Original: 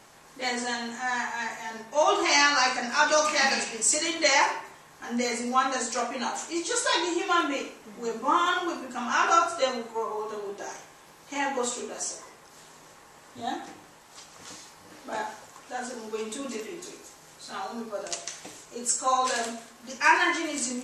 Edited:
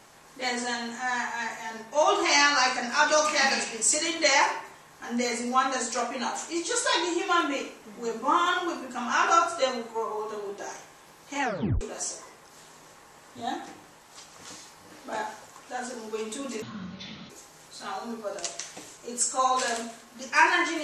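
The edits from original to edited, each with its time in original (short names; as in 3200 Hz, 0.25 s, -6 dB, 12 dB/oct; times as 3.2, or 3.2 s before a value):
11.42 tape stop 0.39 s
16.62–16.98 speed 53%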